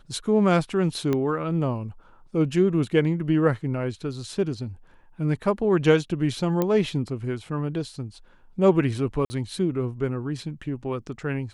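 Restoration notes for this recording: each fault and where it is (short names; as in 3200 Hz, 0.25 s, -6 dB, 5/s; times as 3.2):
1.13 pop -13 dBFS
6.62 pop -11 dBFS
9.25–9.3 gap 50 ms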